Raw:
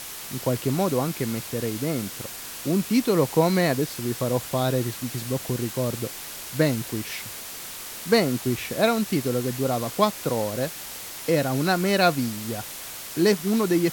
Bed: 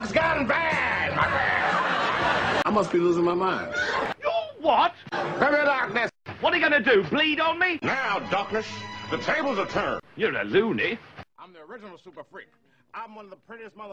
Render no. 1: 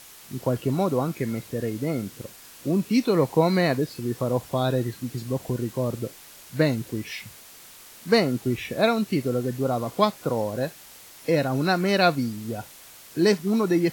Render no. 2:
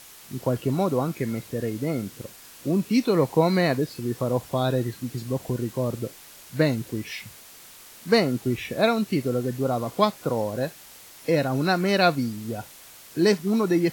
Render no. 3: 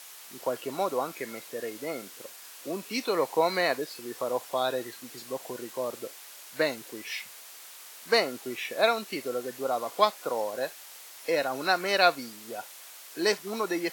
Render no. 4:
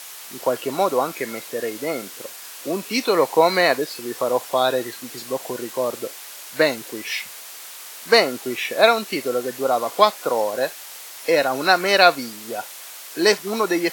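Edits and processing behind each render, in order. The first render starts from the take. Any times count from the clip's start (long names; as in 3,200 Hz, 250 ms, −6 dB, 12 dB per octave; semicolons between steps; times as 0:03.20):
noise reduction from a noise print 10 dB
no processing that can be heard
high-pass filter 560 Hz 12 dB per octave
level +9 dB; brickwall limiter −1 dBFS, peak gain reduction 2 dB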